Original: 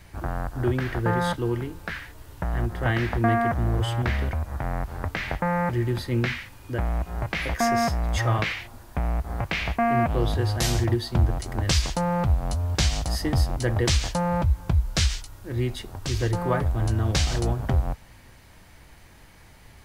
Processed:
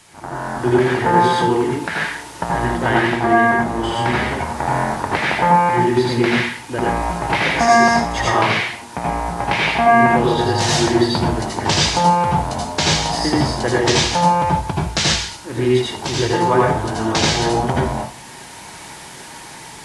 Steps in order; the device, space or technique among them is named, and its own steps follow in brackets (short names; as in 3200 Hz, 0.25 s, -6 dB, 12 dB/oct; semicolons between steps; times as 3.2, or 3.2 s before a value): filmed off a television (BPF 190–7400 Hz; bell 910 Hz +9.5 dB 0.22 oct; reverb RT60 0.40 s, pre-delay 74 ms, DRR -4 dB; white noise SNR 24 dB; AGC gain up to 11 dB; gain -1 dB; AAC 48 kbps 24000 Hz)